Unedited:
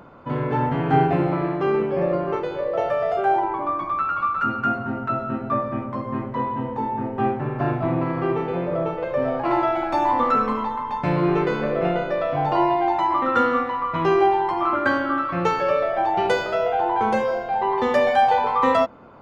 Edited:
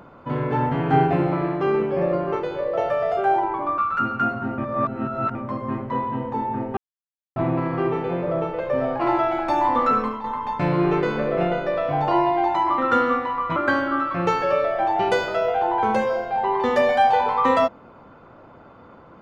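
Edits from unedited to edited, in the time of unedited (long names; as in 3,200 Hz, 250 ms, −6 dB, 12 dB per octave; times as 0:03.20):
0:03.78–0:04.22: remove
0:05.02–0:05.79: reverse
0:07.21–0:07.80: silence
0:10.43–0:10.68: fade out, to −9.5 dB
0:14.00–0:14.74: remove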